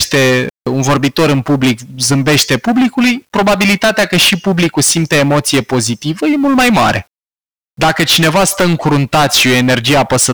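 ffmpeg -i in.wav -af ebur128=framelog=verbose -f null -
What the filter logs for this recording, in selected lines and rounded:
Integrated loudness:
  I:         -11.1 LUFS
  Threshold: -21.1 LUFS
Loudness range:
  LRA:         1.6 LU
  Threshold: -31.4 LUFS
  LRA low:   -12.3 LUFS
  LRA high:  -10.7 LUFS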